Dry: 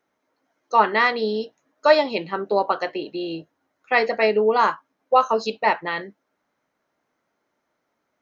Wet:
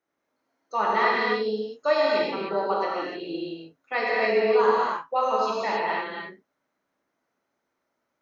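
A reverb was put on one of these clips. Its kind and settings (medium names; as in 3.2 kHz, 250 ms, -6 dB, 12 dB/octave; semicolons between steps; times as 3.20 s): gated-style reverb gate 330 ms flat, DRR -6 dB; trim -10.5 dB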